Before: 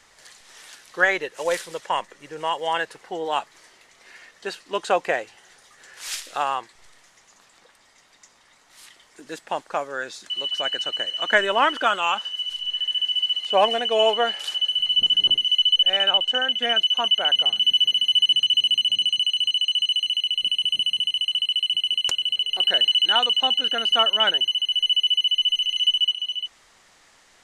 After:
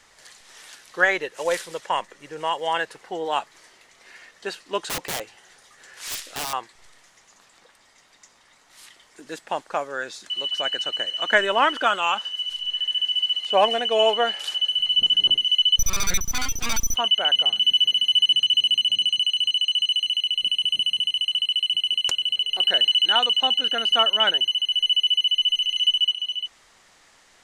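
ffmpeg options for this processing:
-filter_complex "[0:a]asettb=1/sr,asplit=3[a][b][c];[a]atrim=end=4.784[d];[b]atrim=start=4.78:end=6.53,asetpts=PTS-STARTPTS,afade=t=in:d=0.004:c=qsin,afade=t=out:st=1.746:d=0.004:c=qsin,aeval=exprs='(mod(13.3*val(0)+1,2)-1)/13.3':c=same[e];[c]atrim=start=6.526[f];[d][e]acrossfade=d=0.004:c1=hsin:c2=qsin[g];[g][f]acrossfade=d=0.004:c1=qsin:c2=hsin,asettb=1/sr,asplit=3[h][i][j];[h]atrim=end=15.784[k];[i]atrim=start=15.78:end=16.96,asetpts=PTS-STARTPTS,afade=t=in:d=0.004:c=qsin,afade=t=out:st=1.176:d=0.004:c=qsin,aeval=exprs='abs(val(0))':c=same[l];[j]atrim=start=16.956[m];[k][l]acrossfade=d=0.004:c1=hsin:c2=qsin[n];[n][m]acrossfade=d=0.004:c1=qsin:c2=hsin"

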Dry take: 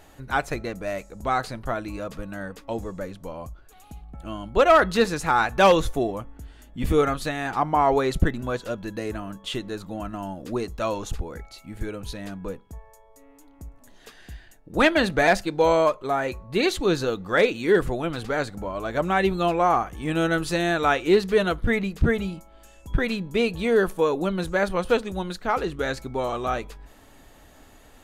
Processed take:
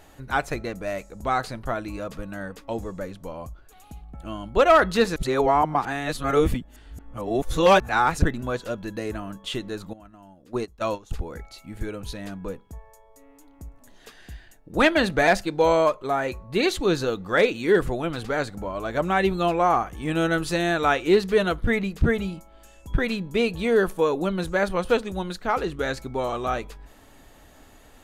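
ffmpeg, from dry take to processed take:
-filter_complex "[0:a]asettb=1/sr,asplit=3[a][b][c];[a]atrim=end=9.934[d];[b]atrim=start=9.93:end=11.11,asetpts=PTS-STARTPTS,afade=t=in:d=0.004:c=qsin,afade=t=out:st=1.176:d=0.004:c=qsin,agate=range=-16dB:threshold=-29dB:ratio=16:release=100:detection=peak[e];[c]atrim=start=11.106[f];[d][e]acrossfade=d=0.004:c1=hsin:c2=qsin[g];[g][f]acrossfade=d=0.004:c1=qsin:c2=hsin,asplit=3[h][i][j];[h]atrim=end=5.162[k];[i]atrim=start=5.158:end=8.222,asetpts=PTS-STARTPTS,areverse[l];[j]atrim=start=8.218[m];[k][l]acrossfade=d=0.004:c1=hsin:c2=hsin[n];[n][m]acrossfade=d=0.004:c1=hsin:c2=hsin"

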